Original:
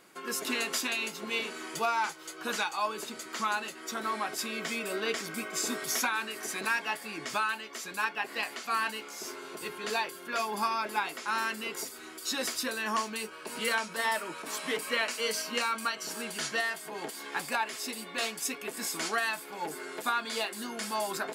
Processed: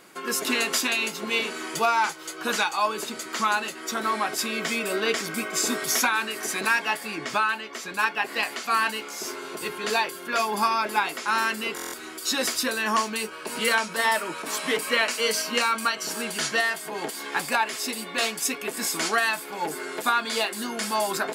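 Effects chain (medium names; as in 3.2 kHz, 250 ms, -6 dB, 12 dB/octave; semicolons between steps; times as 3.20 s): 7.15–7.99 s: treble shelf 5.6 kHz -8.5 dB; buffer glitch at 11.75 s, samples 1024, times 7; trim +7 dB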